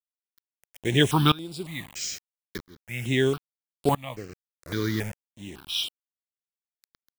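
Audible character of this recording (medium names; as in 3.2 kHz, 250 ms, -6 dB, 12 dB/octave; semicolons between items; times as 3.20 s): a quantiser's noise floor 6-bit, dither none; tremolo saw up 0.76 Hz, depth 95%; notches that jump at a steady rate 3.6 Hz 830–6200 Hz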